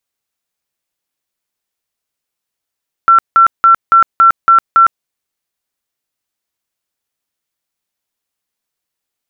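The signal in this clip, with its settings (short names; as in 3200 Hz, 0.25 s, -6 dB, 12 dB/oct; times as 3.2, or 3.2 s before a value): tone bursts 1350 Hz, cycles 144, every 0.28 s, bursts 7, -3 dBFS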